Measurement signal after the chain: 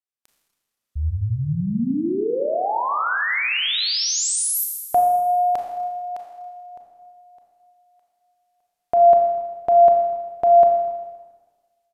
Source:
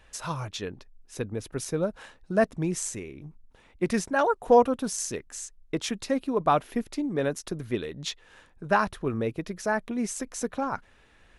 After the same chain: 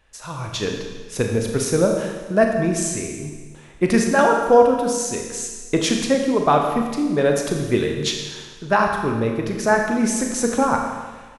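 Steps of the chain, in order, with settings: level rider gain up to 15 dB; Schroeder reverb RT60 1.4 s, combs from 27 ms, DRR 2 dB; resampled via 32 kHz; trim -4 dB

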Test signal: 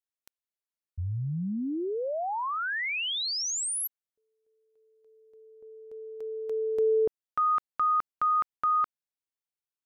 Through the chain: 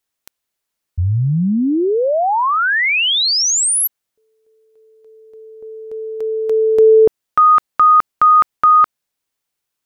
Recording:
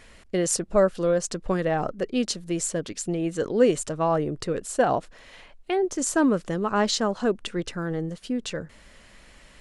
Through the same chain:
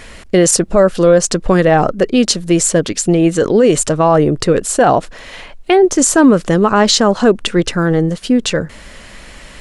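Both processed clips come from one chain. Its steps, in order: loudness maximiser +16.5 dB; trim -1 dB

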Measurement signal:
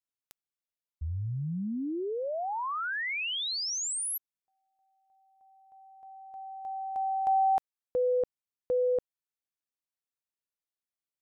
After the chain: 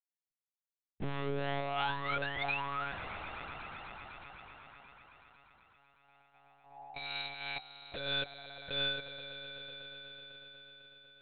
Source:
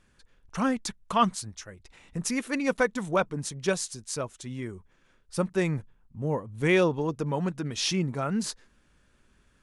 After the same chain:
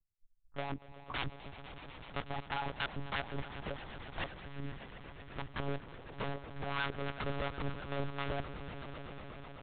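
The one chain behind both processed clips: expander on every frequency bin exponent 2; low-pass 1 kHz 24 dB/octave; compression 10:1, threshold -37 dBFS; integer overflow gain 36.5 dB; harmonic tremolo 3 Hz, depth 70%, crossover 560 Hz; on a send: echo with a slow build-up 124 ms, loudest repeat 5, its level -16 dB; on the sum: monotone LPC vocoder at 8 kHz 140 Hz; trim +8 dB

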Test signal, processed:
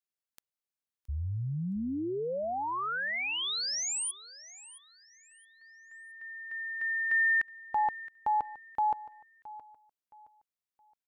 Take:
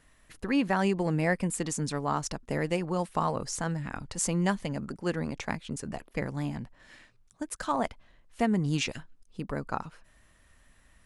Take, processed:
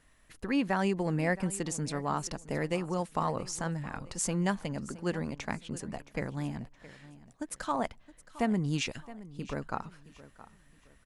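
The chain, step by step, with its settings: feedback delay 669 ms, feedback 31%, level -17.5 dB; trim -2.5 dB

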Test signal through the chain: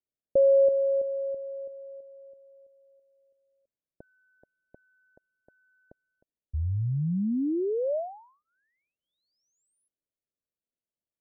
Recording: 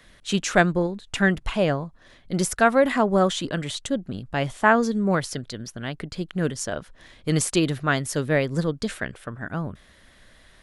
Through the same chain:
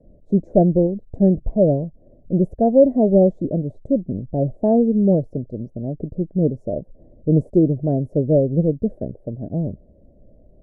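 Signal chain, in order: elliptic low-pass 620 Hz, stop band 50 dB; trim +7 dB

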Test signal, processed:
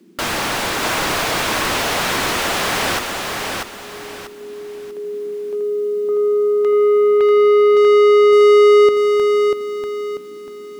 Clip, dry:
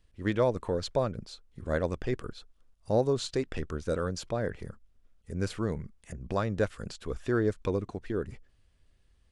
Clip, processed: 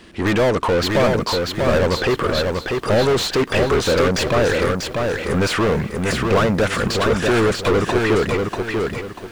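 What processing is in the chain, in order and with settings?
overdrive pedal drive 35 dB, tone 2.6 kHz, clips at -15 dBFS; band noise 180–380 Hz -54 dBFS; bit-crushed delay 641 ms, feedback 35%, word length 9-bit, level -3.5 dB; trim +5 dB

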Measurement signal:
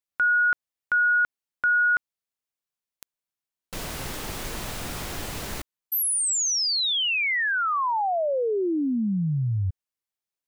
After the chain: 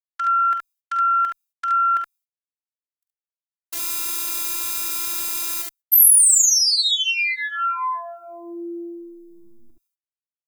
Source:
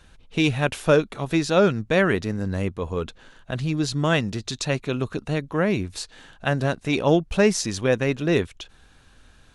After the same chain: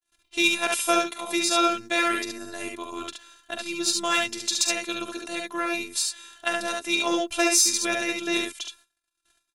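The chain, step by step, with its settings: Chebyshev shaper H 3 -35 dB, 6 -30 dB, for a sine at -4.5 dBFS; gate -49 dBFS, range -49 dB; robot voice 341 Hz; RIAA curve recording; on a send: early reflections 46 ms -9.5 dB, 71 ms -3.5 dB

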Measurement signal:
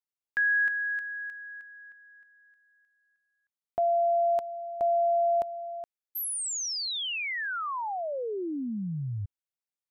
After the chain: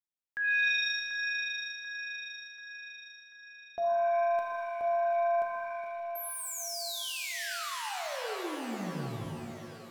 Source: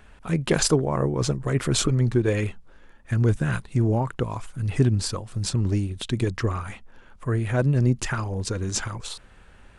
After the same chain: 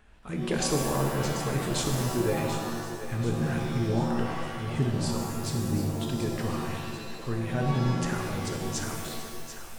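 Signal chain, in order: on a send: two-band feedback delay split 340 Hz, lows 140 ms, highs 738 ms, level -10.5 dB; on the sum: pitch-shifted reverb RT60 1.4 s, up +7 st, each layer -2 dB, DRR 2.5 dB; trim -8.5 dB

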